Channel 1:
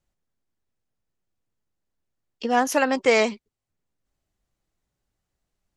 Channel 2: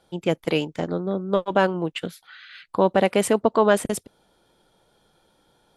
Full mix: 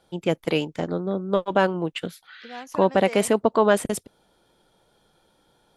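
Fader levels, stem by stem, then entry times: −18.0, −0.5 decibels; 0.00, 0.00 seconds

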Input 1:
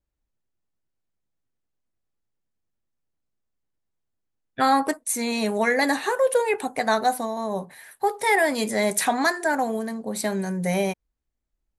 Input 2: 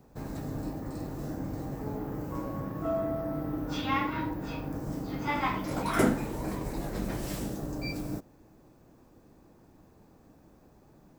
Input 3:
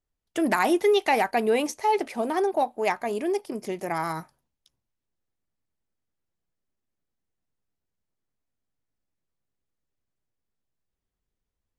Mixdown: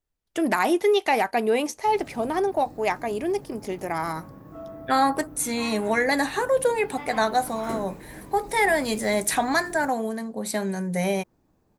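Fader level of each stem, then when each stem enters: −1.0, −9.0, +0.5 decibels; 0.30, 1.70, 0.00 seconds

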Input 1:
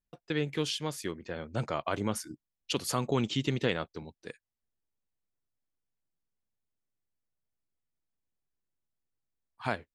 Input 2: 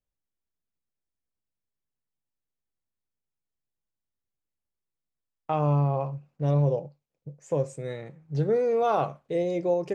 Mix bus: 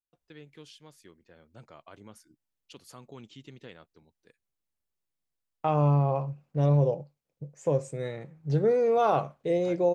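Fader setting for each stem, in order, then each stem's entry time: −18.0, +0.5 decibels; 0.00, 0.15 seconds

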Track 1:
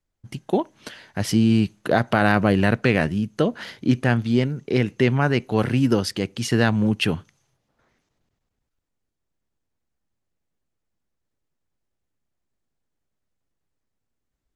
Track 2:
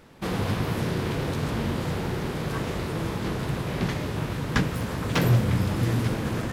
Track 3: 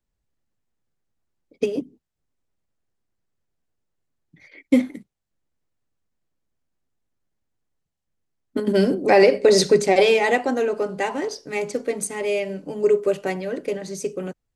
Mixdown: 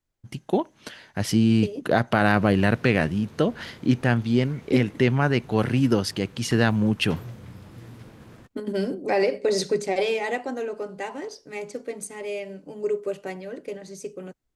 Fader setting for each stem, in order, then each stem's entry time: −1.5, −19.0, −8.0 decibels; 0.00, 1.95, 0.00 seconds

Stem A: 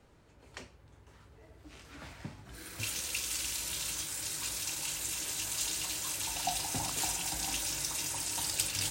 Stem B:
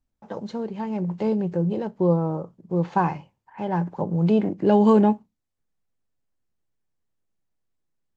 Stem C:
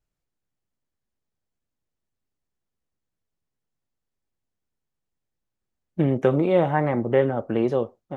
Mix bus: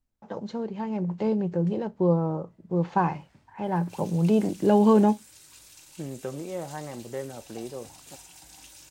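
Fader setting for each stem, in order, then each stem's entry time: −14.5, −2.0, −15.0 decibels; 1.10, 0.00, 0.00 seconds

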